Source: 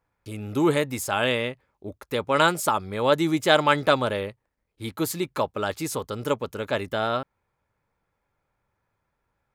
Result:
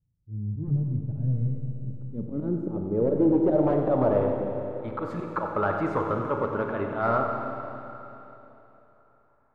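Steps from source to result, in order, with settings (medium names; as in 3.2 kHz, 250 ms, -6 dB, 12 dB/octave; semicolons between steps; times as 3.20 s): dynamic bell 1 kHz, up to -4 dB, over -31 dBFS, Q 1.1; slow attack 110 ms; wavefolder -21 dBFS; low-pass sweep 140 Hz -> 1.2 kHz, 1.45–4.70 s; on a send: two-band feedback delay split 510 Hz, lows 281 ms, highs 93 ms, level -12.5 dB; on the sum: Schroeder reverb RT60 3.2 s, combs from 27 ms, DRR 2.5 dB; trim +1 dB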